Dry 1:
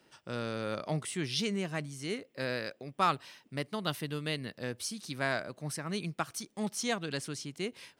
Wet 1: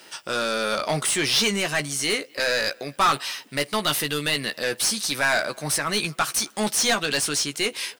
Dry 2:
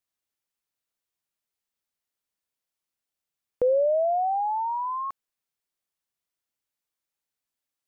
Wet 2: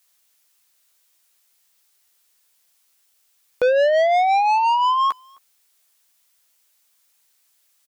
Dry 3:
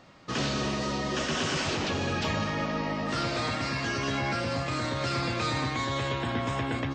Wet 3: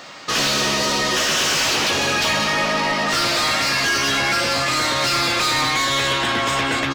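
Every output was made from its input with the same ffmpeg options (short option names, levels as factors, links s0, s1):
-filter_complex "[0:a]asplit=2[s0][s1];[s1]adelay=14,volume=0.355[s2];[s0][s2]amix=inputs=2:normalize=0,crystalizer=i=2.5:c=0,asplit=2[s3][s4];[s4]highpass=f=720:p=1,volume=14.1,asoftclip=type=tanh:threshold=0.282[s5];[s3][s5]amix=inputs=2:normalize=0,lowpass=f=5400:p=1,volume=0.501,asplit=2[s6][s7];[s7]adelay=260,highpass=300,lowpass=3400,asoftclip=type=hard:threshold=0.0841,volume=0.0501[s8];[s6][s8]amix=inputs=2:normalize=0"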